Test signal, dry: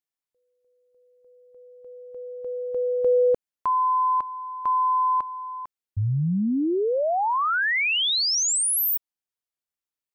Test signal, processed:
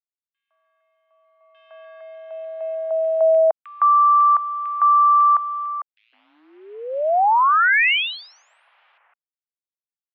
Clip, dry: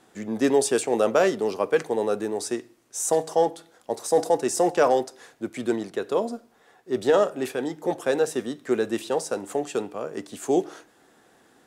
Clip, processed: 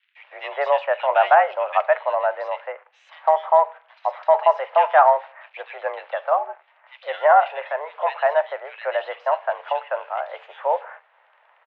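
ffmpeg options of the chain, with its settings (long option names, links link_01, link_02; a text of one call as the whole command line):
ffmpeg -i in.wav -filter_complex "[0:a]acrusher=bits=9:dc=4:mix=0:aa=0.000001,acrossover=split=2100[link_01][link_02];[link_01]adelay=160[link_03];[link_03][link_02]amix=inputs=2:normalize=0,highpass=frequency=520:width_type=q:width=0.5412,highpass=frequency=520:width_type=q:width=1.307,lowpass=frequency=2700:width_type=q:width=0.5176,lowpass=frequency=2700:width_type=q:width=0.7071,lowpass=frequency=2700:width_type=q:width=1.932,afreqshift=150,volume=8dB" out.wav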